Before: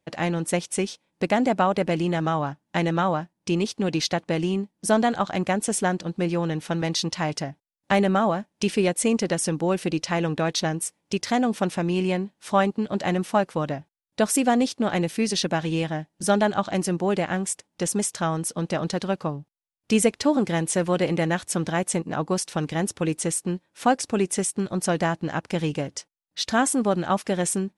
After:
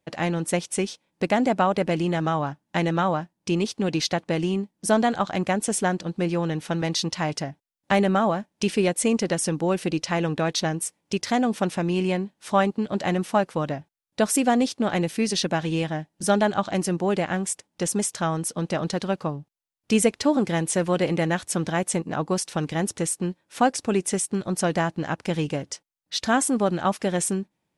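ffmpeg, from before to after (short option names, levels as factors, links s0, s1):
-filter_complex "[0:a]asplit=2[s0][s1];[s0]atrim=end=22.982[s2];[s1]atrim=start=23.228[s3];[s2][s3]acrossfade=d=0.004:c1=hsin:c2=hsin"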